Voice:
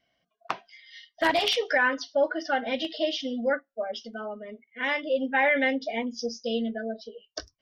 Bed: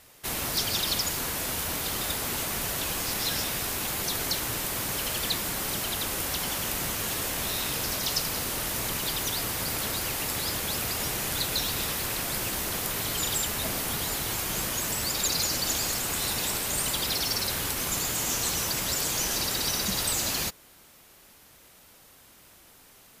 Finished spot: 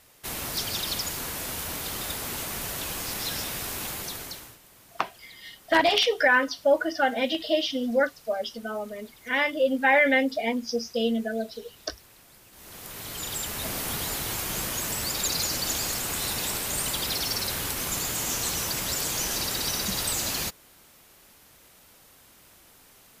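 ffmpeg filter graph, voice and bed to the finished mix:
-filter_complex "[0:a]adelay=4500,volume=3dB[a];[1:a]volume=20.5dB,afade=t=out:st=3.85:d=0.73:silence=0.0891251,afade=t=in:st=12.51:d=1.37:silence=0.0707946[b];[a][b]amix=inputs=2:normalize=0"

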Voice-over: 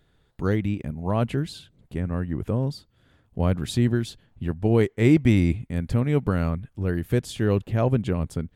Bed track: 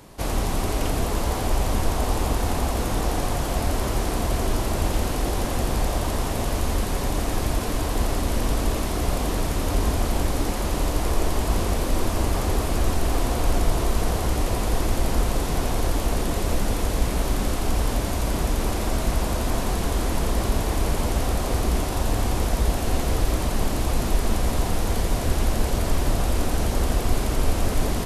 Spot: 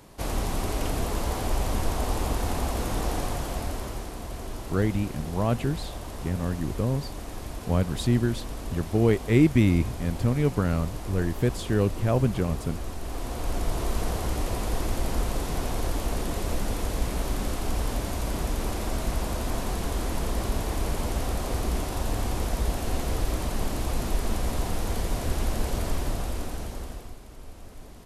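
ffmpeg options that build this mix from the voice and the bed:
-filter_complex "[0:a]adelay=4300,volume=-1.5dB[a];[1:a]volume=3.5dB,afade=t=out:st=3.15:d=0.97:silence=0.375837,afade=t=in:st=13:d=0.93:silence=0.421697,afade=t=out:st=25.82:d=1.35:silence=0.133352[b];[a][b]amix=inputs=2:normalize=0"

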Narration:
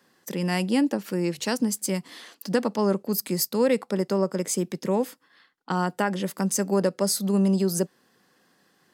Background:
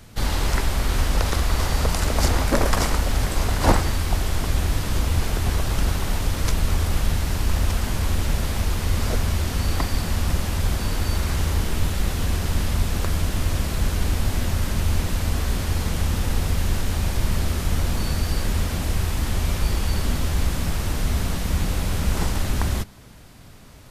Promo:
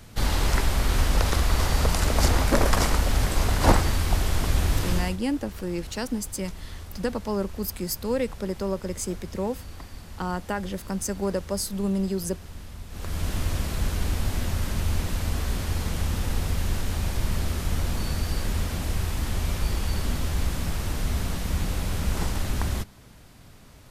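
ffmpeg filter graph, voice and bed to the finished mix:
-filter_complex "[0:a]adelay=4500,volume=-4.5dB[a];[1:a]volume=13dB,afade=t=out:st=4.9:d=0.27:silence=0.141254,afade=t=in:st=12.89:d=0.41:silence=0.199526[b];[a][b]amix=inputs=2:normalize=0"

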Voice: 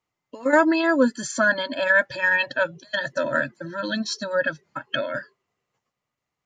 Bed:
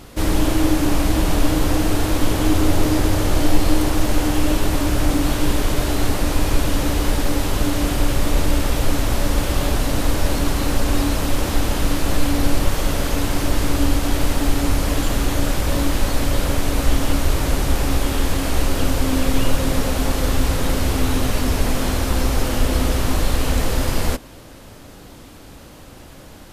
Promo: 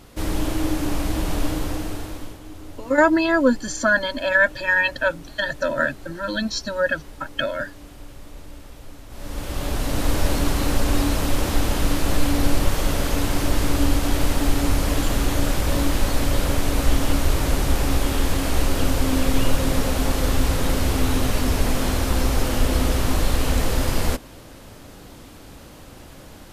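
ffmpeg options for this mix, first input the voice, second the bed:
-filter_complex "[0:a]adelay=2450,volume=1.5dB[a];[1:a]volume=15dB,afade=t=out:st=1.44:d=0.96:silence=0.149624,afade=t=in:st=9.09:d=1.08:silence=0.0891251[b];[a][b]amix=inputs=2:normalize=0"

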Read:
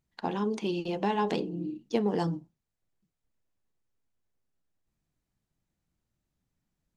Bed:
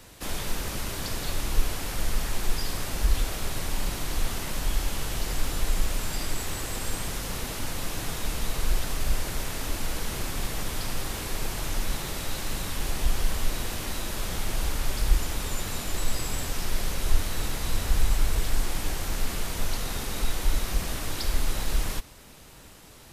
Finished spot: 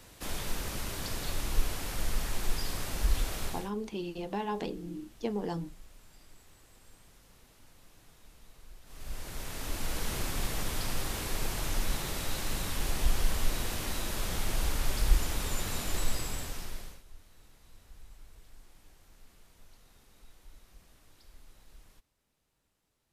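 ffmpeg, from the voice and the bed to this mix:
-filter_complex "[0:a]adelay=3300,volume=-6dB[a];[1:a]volume=20dB,afade=t=out:st=3.44:d=0.27:silence=0.0749894,afade=t=in:st=8.84:d=1.24:silence=0.0595662,afade=t=out:st=15.97:d=1.06:silence=0.0446684[b];[a][b]amix=inputs=2:normalize=0"

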